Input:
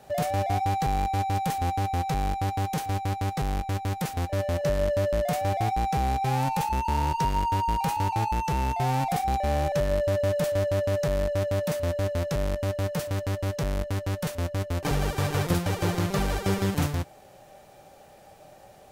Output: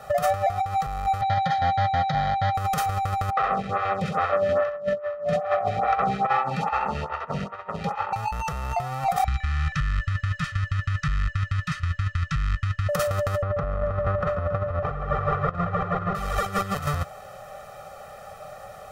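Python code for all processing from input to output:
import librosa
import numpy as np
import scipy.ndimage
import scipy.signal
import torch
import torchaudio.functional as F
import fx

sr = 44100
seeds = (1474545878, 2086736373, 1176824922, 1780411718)

y = fx.chain(x, sr, fx.cabinet(low_hz=120.0, low_slope=12, high_hz=6300.0, hz=(230.0, 440.0, 3100.0, 5500.0), db=(5, -7, 5, -10)),
    fx.fixed_phaser(hz=1800.0, stages=8),
    fx.comb(ms=7.2, depth=0.46), at=(1.21, 2.55))
y = fx.chain(y, sr, fx.bandpass_edges(low_hz=180.0, high_hz=3100.0),
    fx.room_flutter(wall_m=11.4, rt60_s=1.2),
    fx.stagger_phaser(hz=2.4), at=(3.3, 8.13))
y = fx.chain(y, sr, fx.cheby1_bandstop(low_hz=130.0, high_hz=1900.0, order=2),
    fx.air_absorb(metres=120.0), at=(9.24, 12.89))
y = fx.chain(y, sr, fx.lowpass(hz=1500.0, slope=12),
    fx.echo_feedback(ms=138, feedback_pct=58, wet_db=-11.5), at=(13.42, 16.15))
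y = fx.over_compress(y, sr, threshold_db=-29.0, ratio=-0.5)
y = fx.peak_eq(y, sr, hz=1300.0, db=13.5, octaves=0.76)
y = y + 0.96 * np.pad(y, (int(1.6 * sr / 1000.0), 0))[:len(y)]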